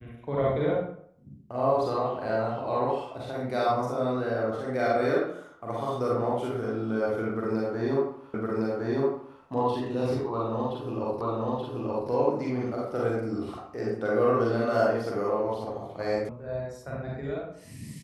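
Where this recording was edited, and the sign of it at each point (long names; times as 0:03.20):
0:08.34: the same again, the last 1.06 s
0:11.21: the same again, the last 0.88 s
0:16.29: cut off before it has died away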